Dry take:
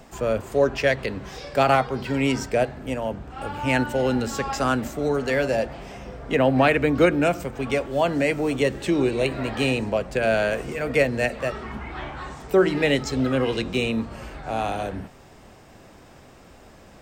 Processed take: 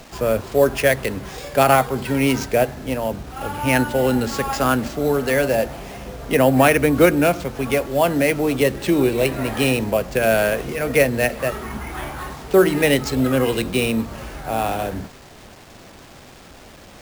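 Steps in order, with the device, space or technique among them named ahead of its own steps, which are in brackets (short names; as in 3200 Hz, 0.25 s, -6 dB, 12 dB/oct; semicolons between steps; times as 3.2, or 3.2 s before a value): early 8-bit sampler (sample-rate reducer 12000 Hz, jitter 0%; bit-crush 8-bit); gain +4 dB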